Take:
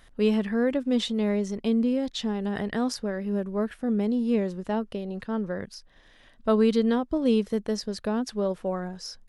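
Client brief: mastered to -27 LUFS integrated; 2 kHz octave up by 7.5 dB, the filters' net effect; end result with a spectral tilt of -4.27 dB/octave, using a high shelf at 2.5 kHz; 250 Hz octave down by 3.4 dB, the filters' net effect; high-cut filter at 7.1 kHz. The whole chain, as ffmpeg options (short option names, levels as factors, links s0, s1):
-af "lowpass=7100,equalizer=f=250:t=o:g=-4,equalizer=f=2000:t=o:g=6,highshelf=f=2500:g=7.5,volume=1.12"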